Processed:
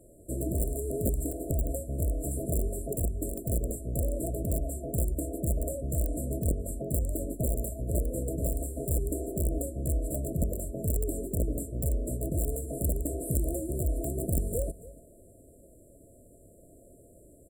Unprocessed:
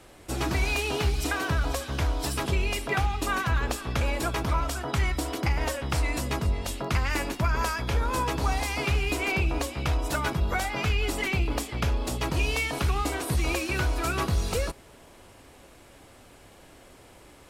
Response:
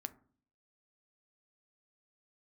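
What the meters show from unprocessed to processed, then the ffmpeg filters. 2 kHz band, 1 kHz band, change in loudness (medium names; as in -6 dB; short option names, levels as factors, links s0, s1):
under -40 dB, under -15 dB, -4.0 dB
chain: -af "aecho=1:1:283:0.133,aeval=exprs='(mod(7.5*val(0)+1,2)-1)/7.5':c=same,afftfilt=real='re*(1-between(b*sr/4096,690,7200))':imag='im*(1-between(b*sr/4096,690,7200))':win_size=4096:overlap=0.75,volume=0.794"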